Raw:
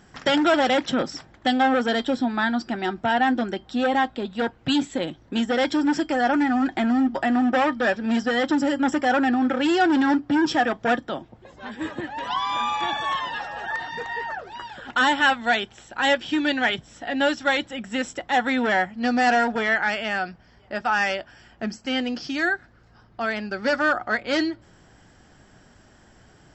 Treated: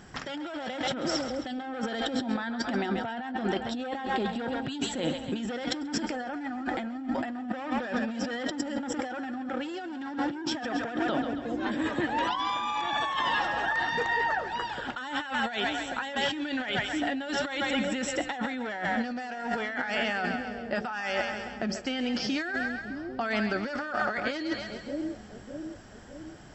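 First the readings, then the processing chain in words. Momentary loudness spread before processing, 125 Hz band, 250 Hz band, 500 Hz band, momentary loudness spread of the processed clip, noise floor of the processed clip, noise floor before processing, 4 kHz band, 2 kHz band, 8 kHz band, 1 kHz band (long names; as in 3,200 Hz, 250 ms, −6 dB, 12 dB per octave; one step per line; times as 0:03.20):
10 LU, −1.0 dB, −8.0 dB, −7.5 dB, 7 LU, −43 dBFS, −54 dBFS, −5.5 dB, −7.0 dB, can't be measured, −8.0 dB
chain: echo with a time of its own for lows and highs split 530 Hz, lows 608 ms, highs 134 ms, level −12 dB
compressor whose output falls as the input rises −29 dBFS, ratio −1
level −2.5 dB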